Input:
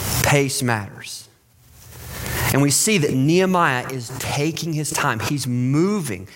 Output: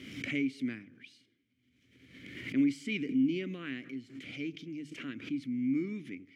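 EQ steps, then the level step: vowel filter i; tone controls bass +1 dB, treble -5 dB; hum notches 50/100/150 Hz; -5.0 dB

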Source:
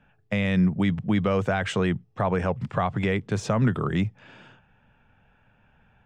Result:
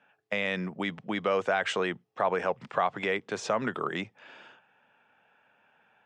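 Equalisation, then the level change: band-pass 420–7400 Hz; 0.0 dB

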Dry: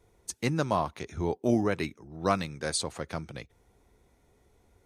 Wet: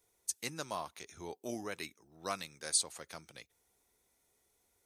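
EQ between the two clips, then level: pre-emphasis filter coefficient 0.8; bass shelf 230 Hz -11.5 dB; +2.0 dB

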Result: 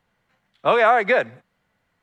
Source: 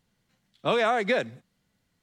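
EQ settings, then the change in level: three-band isolator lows -19 dB, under 540 Hz, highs -23 dB, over 2.2 kHz; bass shelf 350 Hz +12 dB; treble shelf 3.1 kHz +11.5 dB; +8.0 dB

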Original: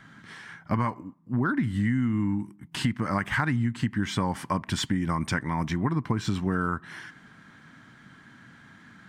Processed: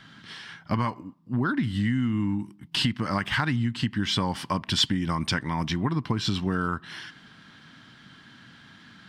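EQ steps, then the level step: high-order bell 3.8 kHz +9.5 dB 1.2 oct; 0.0 dB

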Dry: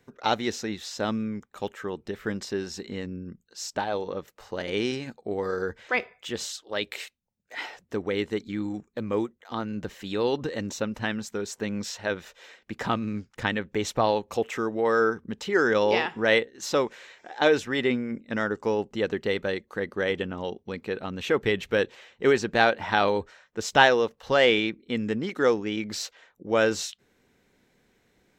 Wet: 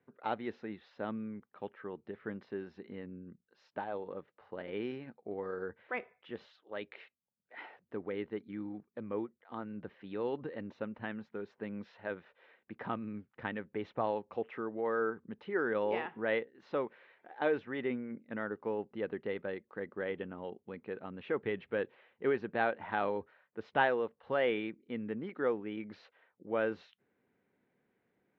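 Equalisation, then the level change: band-pass 110–2700 Hz; distance through air 300 m; bass shelf 140 Hz -3 dB; -9.0 dB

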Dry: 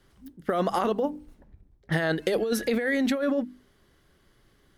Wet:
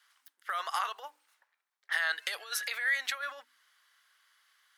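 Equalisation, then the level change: high-pass 1.2 kHz 24 dB/octave; peaking EQ 2.3 kHz -3.5 dB 2.7 oct; treble shelf 6.3 kHz -5.5 dB; +5.0 dB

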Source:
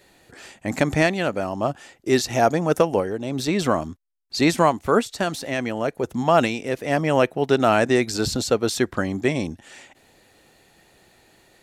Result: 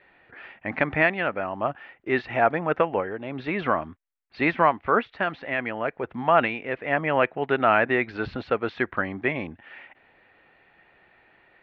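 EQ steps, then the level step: low-pass 2.4 kHz 24 dB/octave; distance through air 210 m; tilt shelf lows -8.5 dB, about 880 Hz; 0.0 dB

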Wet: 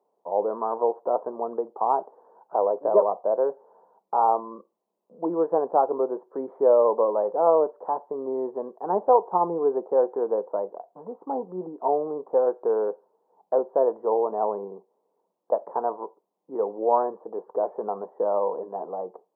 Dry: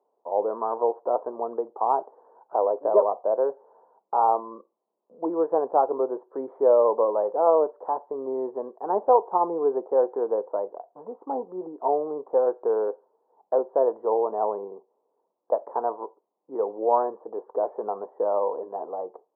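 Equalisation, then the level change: peaking EQ 180 Hz +11 dB 0.45 oct; 0.0 dB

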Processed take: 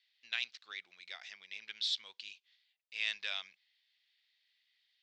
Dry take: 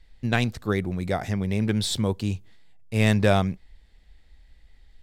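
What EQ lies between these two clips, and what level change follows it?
Butterworth band-pass 4.1 kHz, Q 1.1; distance through air 150 m; 0.0 dB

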